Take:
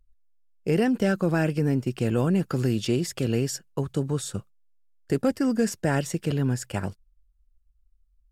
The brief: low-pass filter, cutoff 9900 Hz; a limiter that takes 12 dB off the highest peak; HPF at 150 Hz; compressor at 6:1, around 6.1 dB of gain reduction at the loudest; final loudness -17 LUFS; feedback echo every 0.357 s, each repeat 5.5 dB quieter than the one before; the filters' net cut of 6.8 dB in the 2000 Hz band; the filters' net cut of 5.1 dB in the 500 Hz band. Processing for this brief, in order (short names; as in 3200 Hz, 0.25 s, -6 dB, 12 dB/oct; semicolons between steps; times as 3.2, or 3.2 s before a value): HPF 150 Hz; LPF 9900 Hz; bell 500 Hz -6 dB; bell 2000 Hz -9 dB; compressor 6:1, threshold -28 dBFS; limiter -29.5 dBFS; feedback echo 0.357 s, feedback 53%, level -5.5 dB; gain +21.5 dB